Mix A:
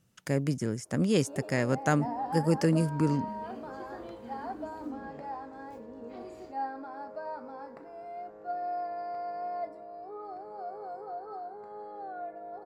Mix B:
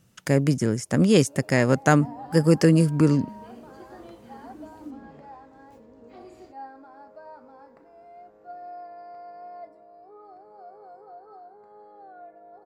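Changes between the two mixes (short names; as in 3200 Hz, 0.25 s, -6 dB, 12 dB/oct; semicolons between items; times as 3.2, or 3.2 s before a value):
speech +8.0 dB; first sound -6.0 dB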